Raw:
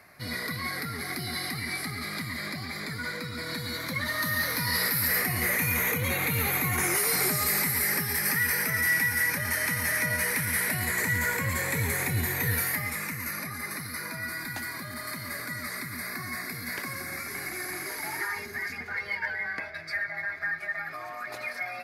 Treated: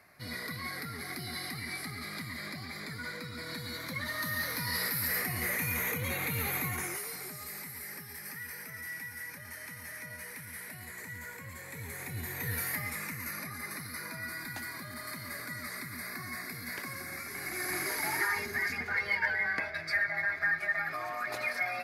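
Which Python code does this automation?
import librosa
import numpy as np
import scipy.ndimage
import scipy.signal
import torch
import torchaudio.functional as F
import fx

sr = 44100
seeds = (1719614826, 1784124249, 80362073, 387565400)

y = fx.gain(x, sr, db=fx.line((6.64, -6.0), (7.2, -16.5), (11.62, -16.5), (12.77, -5.0), (17.34, -5.0), (17.75, 1.5)))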